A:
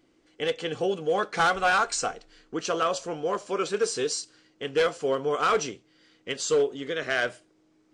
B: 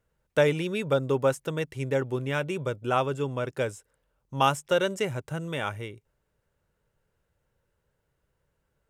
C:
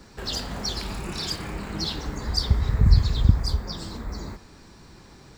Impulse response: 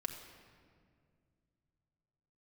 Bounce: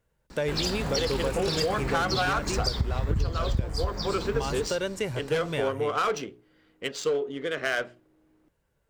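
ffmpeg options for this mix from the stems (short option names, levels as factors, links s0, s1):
-filter_complex "[0:a]bandreject=f=60:t=h:w=6,bandreject=f=120:t=h:w=6,bandreject=f=180:t=h:w=6,bandreject=f=240:t=h:w=6,bandreject=f=300:t=h:w=6,bandreject=f=360:t=h:w=6,bandreject=f=420:t=h:w=6,adynamicsmooth=sensitivity=4:basefreq=2400,adelay=550,volume=1.06[s0];[1:a]bandreject=f=1300:w=12,alimiter=limit=0.0944:level=0:latency=1:release=273,volume=1.19[s1];[2:a]adelay=300,volume=1.19[s2];[s0][s1][s2]amix=inputs=3:normalize=0,acompressor=threshold=0.0794:ratio=10"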